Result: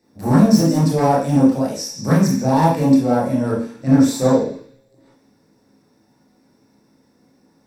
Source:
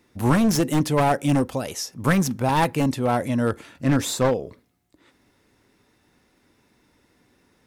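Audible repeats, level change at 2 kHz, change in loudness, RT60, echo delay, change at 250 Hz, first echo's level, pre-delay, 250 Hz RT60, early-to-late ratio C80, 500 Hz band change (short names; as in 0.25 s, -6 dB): none, -3.0 dB, +6.0 dB, 0.50 s, none, +7.5 dB, none, 21 ms, 0.50 s, 8.0 dB, +5.0 dB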